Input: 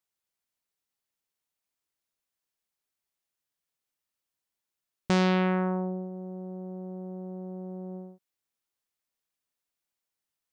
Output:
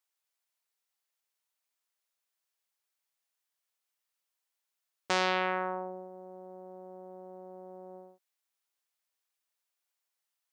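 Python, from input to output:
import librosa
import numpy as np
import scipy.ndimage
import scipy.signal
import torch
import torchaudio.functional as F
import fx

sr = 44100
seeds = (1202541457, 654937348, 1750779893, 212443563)

y = scipy.signal.sosfilt(scipy.signal.butter(2, 580.0, 'highpass', fs=sr, output='sos'), x)
y = F.gain(torch.from_numpy(y), 1.5).numpy()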